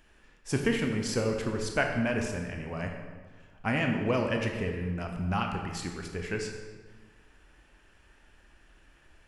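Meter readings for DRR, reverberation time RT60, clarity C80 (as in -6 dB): 2.5 dB, 1.5 s, 6.0 dB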